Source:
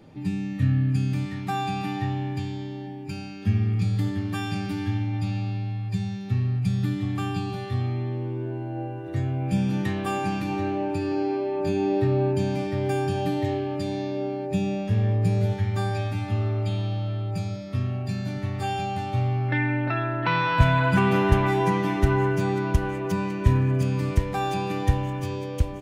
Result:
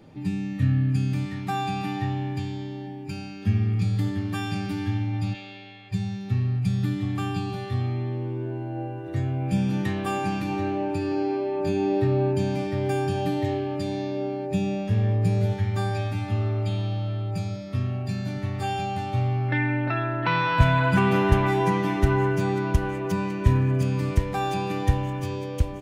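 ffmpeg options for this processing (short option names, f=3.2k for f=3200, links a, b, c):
-filter_complex "[0:a]asplit=3[a][b][c];[a]afade=t=out:st=5.33:d=0.02[d];[b]highpass=440,equalizer=f=520:t=q:w=4:g=6,equalizer=f=740:t=q:w=4:g=-6,equalizer=f=1.1k:t=q:w=4:g=-5,equalizer=f=2.1k:t=q:w=4:g=5,equalizer=f=3.3k:t=q:w=4:g=8,equalizer=f=5.3k:t=q:w=4:g=-5,lowpass=f=7.7k:w=0.5412,lowpass=f=7.7k:w=1.3066,afade=t=in:st=5.33:d=0.02,afade=t=out:st=5.91:d=0.02[e];[c]afade=t=in:st=5.91:d=0.02[f];[d][e][f]amix=inputs=3:normalize=0"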